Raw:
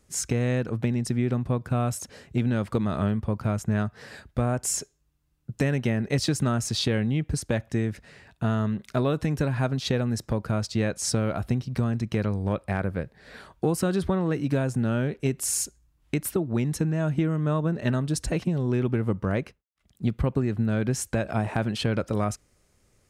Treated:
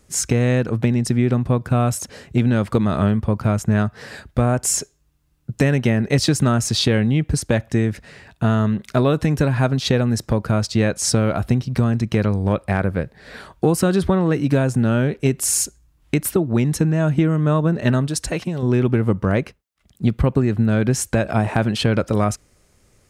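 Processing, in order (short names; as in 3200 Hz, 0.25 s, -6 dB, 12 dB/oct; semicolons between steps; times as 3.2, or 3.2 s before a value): 18.07–18.63 low shelf 440 Hz -8 dB; gain +7.5 dB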